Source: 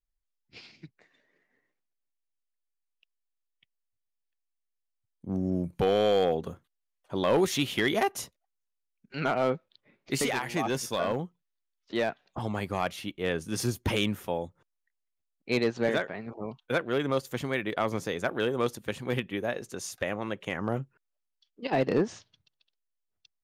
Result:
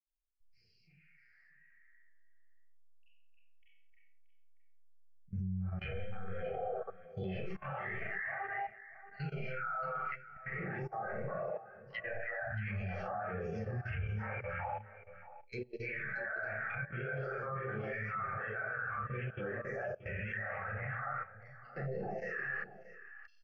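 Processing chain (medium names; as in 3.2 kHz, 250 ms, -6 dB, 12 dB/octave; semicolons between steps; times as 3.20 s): three bands offset in time highs, lows, mids 40/310 ms, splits 470/2200 Hz; Schroeder reverb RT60 0.75 s, combs from 29 ms, DRR -9.5 dB; phase shifter stages 2, 0.47 Hz, lowest notch 270–2600 Hz; compression 6:1, threshold -33 dBFS, peak gain reduction 17.5 dB; resonant low shelf 790 Hz -11 dB, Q 1.5; low-pass that closes with the level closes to 890 Hz, closed at -35 dBFS; static phaser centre 1 kHz, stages 6; level held to a coarse grid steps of 18 dB; low-pass 4.9 kHz 24 dB/octave; on a send: delay 629 ms -10 dB; on the sum: spectral contrast expander 1.5:1; trim +12.5 dB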